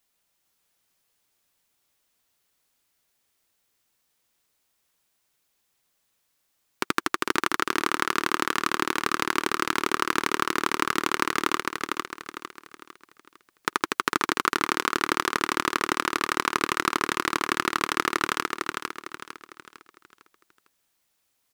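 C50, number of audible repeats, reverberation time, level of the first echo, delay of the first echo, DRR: none, 4, none, -4.0 dB, 0.453 s, none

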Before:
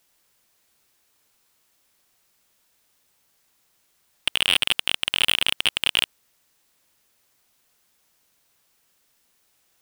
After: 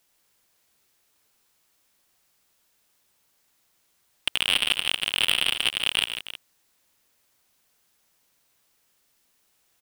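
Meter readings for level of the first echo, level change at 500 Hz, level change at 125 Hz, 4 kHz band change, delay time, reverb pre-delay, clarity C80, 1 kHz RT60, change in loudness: -16.0 dB, -2.0 dB, -2.0 dB, -2.0 dB, 84 ms, none, none, none, -2.0 dB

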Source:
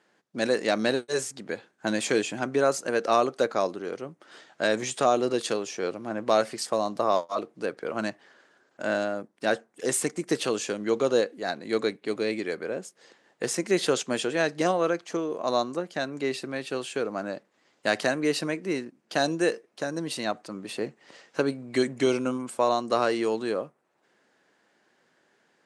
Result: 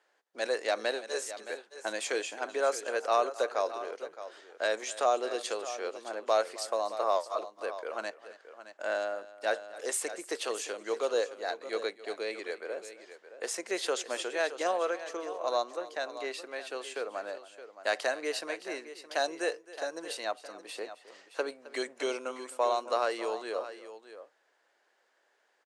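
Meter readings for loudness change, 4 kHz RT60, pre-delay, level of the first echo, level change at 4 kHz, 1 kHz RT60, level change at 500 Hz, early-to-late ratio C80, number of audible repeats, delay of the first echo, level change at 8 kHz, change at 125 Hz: -6.0 dB, none, none, -18.0 dB, -5.0 dB, none, -5.5 dB, none, 2, 0.265 s, -5.0 dB, under -30 dB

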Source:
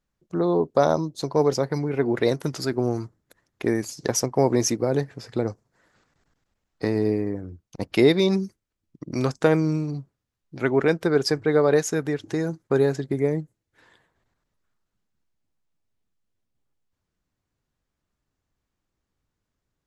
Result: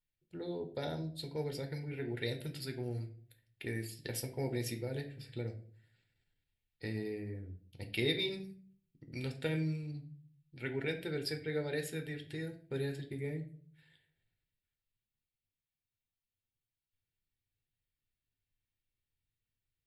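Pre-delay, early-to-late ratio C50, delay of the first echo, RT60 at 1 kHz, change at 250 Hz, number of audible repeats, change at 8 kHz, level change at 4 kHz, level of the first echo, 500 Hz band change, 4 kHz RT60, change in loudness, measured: 8 ms, 12.0 dB, none, 0.40 s, -17.0 dB, none, -18.5 dB, -8.0 dB, none, -18.0 dB, 0.35 s, -16.0 dB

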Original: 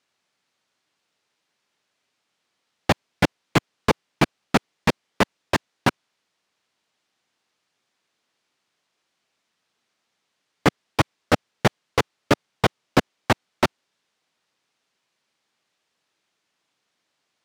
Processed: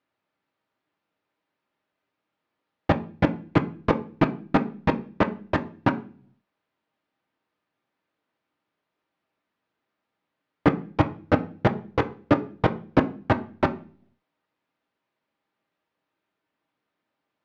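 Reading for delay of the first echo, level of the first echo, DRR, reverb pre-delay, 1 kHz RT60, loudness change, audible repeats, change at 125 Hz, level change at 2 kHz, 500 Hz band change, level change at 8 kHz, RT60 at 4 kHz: none, none, 5.5 dB, 3 ms, 0.35 s, -1.5 dB, none, 0.0 dB, -5.5 dB, -1.0 dB, under -20 dB, 0.45 s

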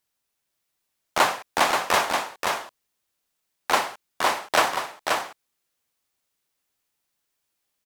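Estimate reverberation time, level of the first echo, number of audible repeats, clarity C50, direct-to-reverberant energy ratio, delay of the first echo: none, -4.5 dB, 1, none, none, 0.53 s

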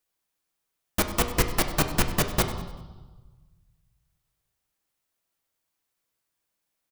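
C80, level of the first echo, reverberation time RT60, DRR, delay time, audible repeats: 10.0 dB, -16.0 dB, 1.3 s, 5.5 dB, 97 ms, 1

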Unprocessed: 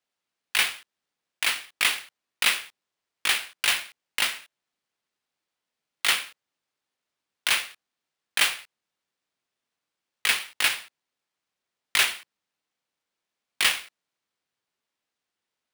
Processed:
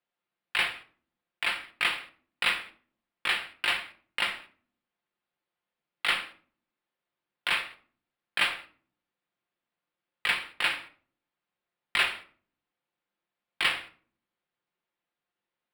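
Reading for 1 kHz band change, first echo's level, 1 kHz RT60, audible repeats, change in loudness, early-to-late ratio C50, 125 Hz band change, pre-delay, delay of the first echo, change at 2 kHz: -0.5 dB, none, 0.45 s, none, -4.5 dB, 14.5 dB, n/a, 6 ms, none, -2.5 dB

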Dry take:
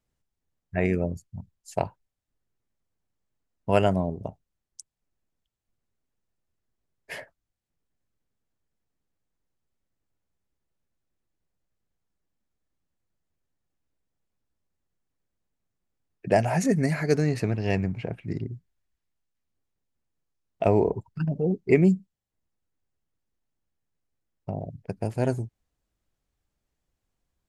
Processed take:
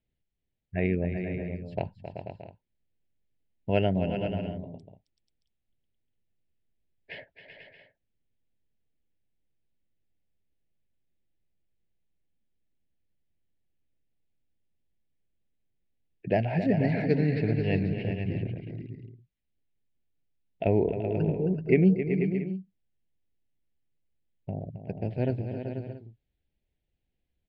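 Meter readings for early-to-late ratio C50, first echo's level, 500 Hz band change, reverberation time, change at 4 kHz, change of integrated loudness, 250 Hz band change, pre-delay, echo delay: none, -10.5 dB, -2.5 dB, none, -2.5 dB, -2.5 dB, -0.5 dB, none, 0.268 s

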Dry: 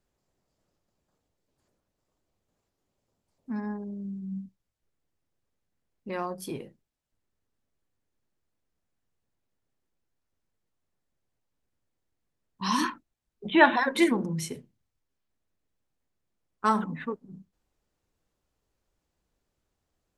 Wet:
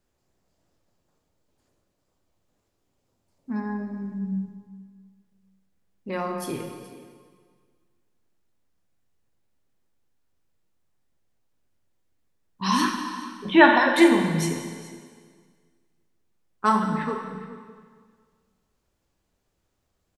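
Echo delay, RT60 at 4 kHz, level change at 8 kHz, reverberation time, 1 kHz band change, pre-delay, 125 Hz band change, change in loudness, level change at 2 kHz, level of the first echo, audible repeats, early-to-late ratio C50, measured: 0.422 s, 1.7 s, +5.0 dB, 1.8 s, +5.0 dB, 5 ms, +6.0 dB, +5.0 dB, +5.0 dB, -17.5 dB, 1, 4.5 dB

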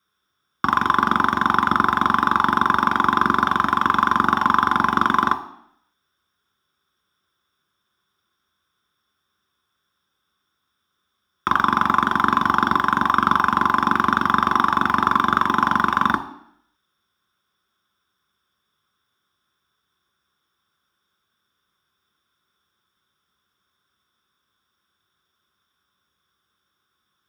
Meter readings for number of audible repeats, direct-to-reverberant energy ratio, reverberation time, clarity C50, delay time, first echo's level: none, 7.5 dB, 0.65 s, 14.0 dB, none, none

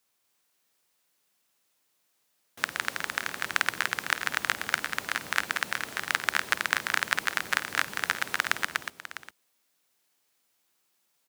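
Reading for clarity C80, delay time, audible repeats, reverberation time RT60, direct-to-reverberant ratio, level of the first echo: none, 51 ms, 4, none, none, -14.5 dB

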